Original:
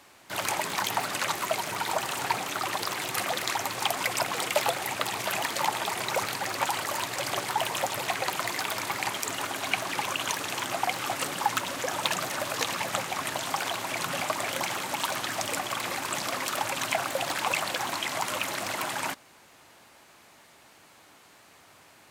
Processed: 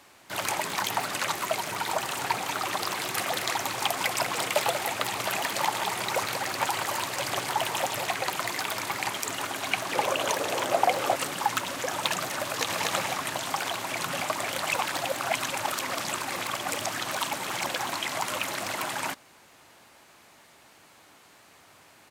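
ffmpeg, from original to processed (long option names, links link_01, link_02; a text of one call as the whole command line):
ffmpeg -i in.wav -filter_complex "[0:a]asettb=1/sr,asplit=3[link_01][link_02][link_03];[link_01]atrim=end=2.234[link_04];[link_02]atrim=start=2.23:end=8.06,asetpts=PTS-STARTPTS,afade=type=in:duration=0.004:curve=qsin,afade=type=out:start_time=5.826:duration=0.004:curve=qsin,aecho=1:1:188:0.398,atrim=end_sample=257103[link_05];[link_03]atrim=start=8.056[link_06];[link_04][link_05]acrossfade=duration=0.004:curve1=hsin:curve2=qsin[link_07];[link_07][link_06]acrossfade=duration=0.004:curve1=qsin:curve2=hsin,asettb=1/sr,asplit=3[link_08][link_09][link_10];[link_08]atrim=end=9.924[link_11];[link_09]atrim=start=9.92:end=11.16,asetpts=PTS-STARTPTS,afade=type=in:duration=0.004:curve=qsin,afade=type=out:start_time=1.236:duration=0.004:curve=qsin,equalizer=frequency=530:width_type=o:width=0.98:gain=13.5[link_12];[link_10]atrim=start=11.156[link_13];[link_11][link_12]acrossfade=duration=0.004:curve1=hsin:curve2=qsin[link_14];[link_14][link_13]acrossfade=duration=0.004:curve1=qsin:curve2=hsin,asplit=2[link_15][link_16];[link_16]afade=type=in:start_time=12.45:duration=0.01,afade=type=out:start_time=12.91:duration=0.01,aecho=0:1:240|480|720|960:0.794328|0.198582|0.0496455|0.0124114[link_17];[link_15][link_17]amix=inputs=2:normalize=0,asplit=3[link_18][link_19][link_20];[link_18]atrim=end=14.582[link_21];[link_19]atrim=start=14.578:end=17.692,asetpts=PTS-STARTPTS,areverse[link_22];[link_20]atrim=start=17.688[link_23];[link_21][link_22]acrossfade=duration=0.004:curve1=hsin:curve2=hsin[link_24];[link_24][link_23]acrossfade=duration=0.004:curve1=hsin:curve2=hsin" out.wav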